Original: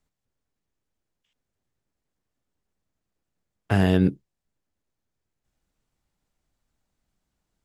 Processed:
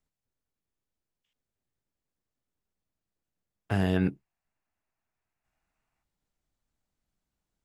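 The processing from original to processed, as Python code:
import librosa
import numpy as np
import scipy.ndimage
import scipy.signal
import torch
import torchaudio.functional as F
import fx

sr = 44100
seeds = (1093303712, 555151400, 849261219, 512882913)

y = fx.spec_box(x, sr, start_s=3.96, length_s=2.07, low_hz=620.0, high_hz=2900.0, gain_db=9)
y = F.gain(torch.from_numpy(y), -6.5).numpy()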